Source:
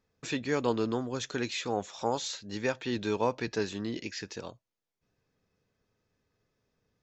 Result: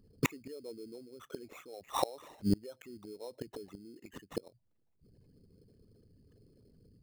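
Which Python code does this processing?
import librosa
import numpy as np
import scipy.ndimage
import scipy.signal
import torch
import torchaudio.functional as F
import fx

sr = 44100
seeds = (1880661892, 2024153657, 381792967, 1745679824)

y = fx.envelope_sharpen(x, sr, power=3.0)
y = fx.sample_hold(y, sr, seeds[0], rate_hz=4700.0, jitter_pct=0)
y = fx.gate_flip(y, sr, shuts_db=-30.0, range_db=-32)
y = y * 10.0 ** (15.0 / 20.0)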